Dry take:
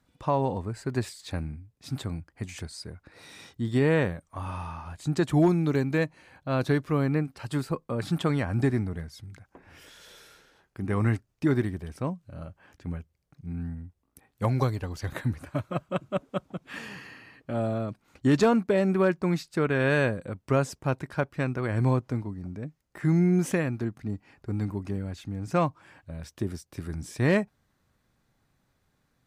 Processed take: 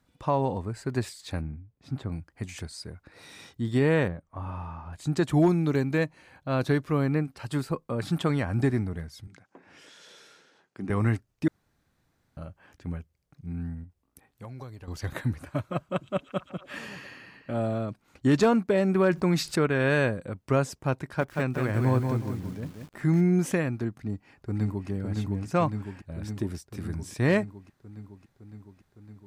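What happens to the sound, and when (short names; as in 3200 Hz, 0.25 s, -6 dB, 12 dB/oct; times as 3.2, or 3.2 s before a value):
1.41–2.12 LPF 1300 Hz 6 dB/oct
4.08–4.93 LPF 1100 Hz 6 dB/oct
9.27–10.9 Chebyshev band-pass 200–7100 Hz
11.48–12.37 room tone
13.84–14.88 compressor 2.5:1, threshold -46 dBFS
15.84–17.85 delay with a stepping band-pass 0.115 s, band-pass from 5200 Hz, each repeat -0.7 oct, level -7 dB
18.95–19.66 fast leveller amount 50%
21.01–23.21 lo-fi delay 0.182 s, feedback 35%, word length 8-bit, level -5 dB
23.99–24.89 echo throw 0.56 s, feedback 75%, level -3.5 dB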